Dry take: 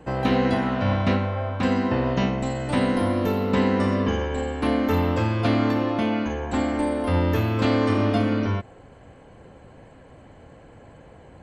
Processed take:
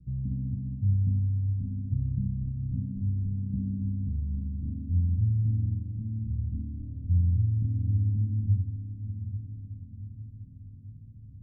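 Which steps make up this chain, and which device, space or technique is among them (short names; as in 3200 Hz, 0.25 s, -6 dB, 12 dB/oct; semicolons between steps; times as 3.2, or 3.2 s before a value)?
dynamic EQ 430 Hz, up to -8 dB, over -37 dBFS, Q 1.1; the neighbour's flat through the wall (LPF 160 Hz 24 dB/oct; bell 97 Hz +3 dB); diffused feedback echo 0.643 s, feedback 56%, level -9 dB; gain -1 dB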